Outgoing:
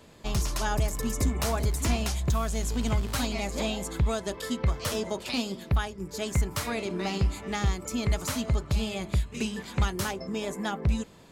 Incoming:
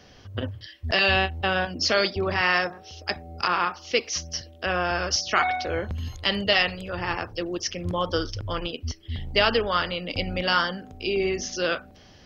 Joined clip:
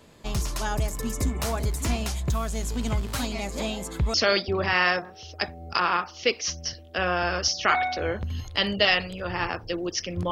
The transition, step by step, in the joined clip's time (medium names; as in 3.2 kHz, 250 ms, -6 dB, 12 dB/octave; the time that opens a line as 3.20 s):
outgoing
4.14 s: go over to incoming from 1.82 s